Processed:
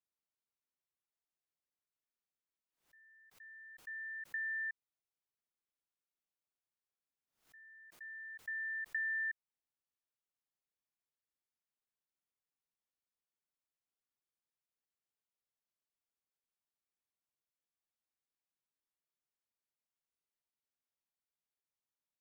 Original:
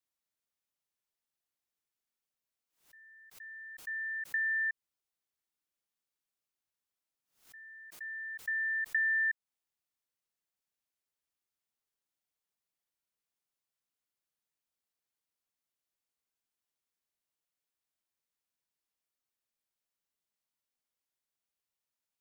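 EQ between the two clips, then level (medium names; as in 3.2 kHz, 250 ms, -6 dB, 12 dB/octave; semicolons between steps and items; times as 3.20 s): treble shelf 3.2 kHz -7.5 dB; -5.5 dB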